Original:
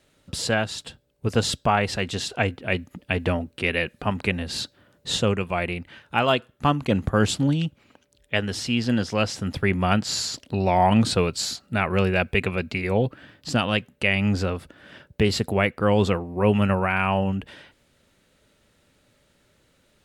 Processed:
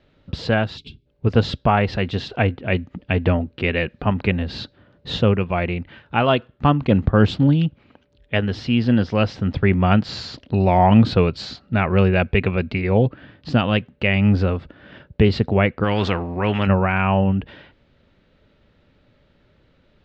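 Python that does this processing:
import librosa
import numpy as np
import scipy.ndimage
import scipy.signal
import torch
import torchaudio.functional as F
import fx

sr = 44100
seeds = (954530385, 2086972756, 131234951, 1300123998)

y = fx.spec_box(x, sr, start_s=0.77, length_s=0.29, low_hz=450.0, high_hz=2100.0, gain_db=-23)
y = fx.spectral_comp(y, sr, ratio=2.0, at=(15.83, 16.66), fade=0.02)
y = scipy.signal.sosfilt(scipy.signal.butter(4, 4400.0, 'lowpass', fs=sr, output='sos'), y)
y = fx.tilt_eq(y, sr, slope=-1.5)
y = y * librosa.db_to_amplitude(2.5)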